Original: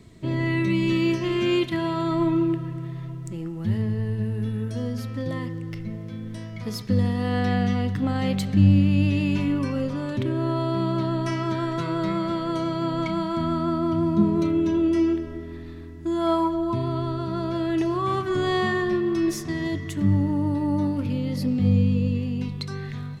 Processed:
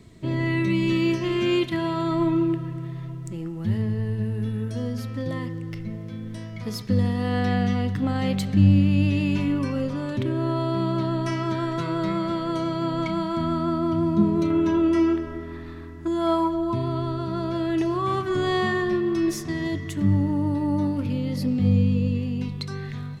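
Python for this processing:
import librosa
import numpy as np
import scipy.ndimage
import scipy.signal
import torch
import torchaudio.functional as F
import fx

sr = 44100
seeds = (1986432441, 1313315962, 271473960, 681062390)

y = fx.peak_eq(x, sr, hz=1200.0, db=9.0, octaves=1.4, at=(14.5, 16.08))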